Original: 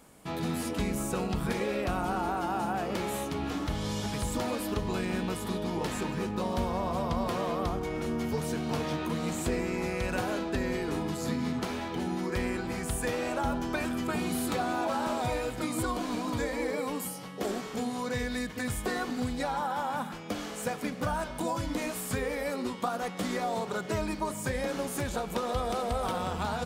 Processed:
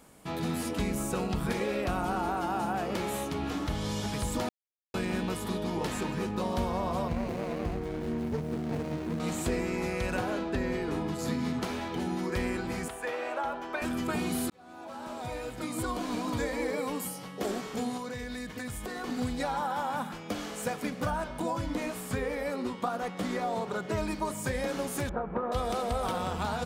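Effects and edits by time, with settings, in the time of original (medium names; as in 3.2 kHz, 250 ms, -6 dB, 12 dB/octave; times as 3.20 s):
4.49–4.94 s: mute
7.08–9.20 s: median filter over 41 samples
10.17–11.19 s: treble shelf 4.3 kHz -7 dB
12.88–13.82 s: three-band isolator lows -21 dB, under 380 Hz, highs -12 dB, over 3.2 kHz
14.50–16.18 s: fade in
17.97–19.04 s: compression 5:1, threshold -34 dBFS
21.10–23.98 s: treble shelf 3.7 kHz -6.5 dB
25.09–25.52 s: low-pass 1.7 kHz 24 dB/octave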